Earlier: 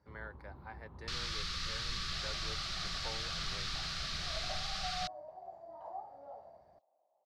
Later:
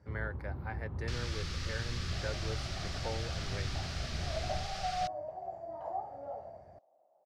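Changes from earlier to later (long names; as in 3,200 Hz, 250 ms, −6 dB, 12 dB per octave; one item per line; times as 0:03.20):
speech +9.0 dB
second sound +9.5 dB
master: add graphic EQ with 15 bands 100 Hz +9 dB, 1,000 Hz −7 dB, 4,000 Hz −7 dB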